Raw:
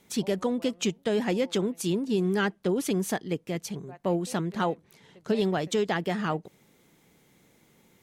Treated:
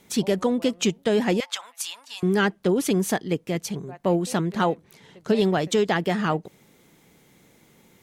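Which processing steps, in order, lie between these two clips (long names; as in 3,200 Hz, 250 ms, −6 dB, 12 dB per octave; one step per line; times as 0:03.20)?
0:01.40–0:02.23: inverse Chebyshev high-pass filter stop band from 420 Hz, stop band 40 dB
level +5 dB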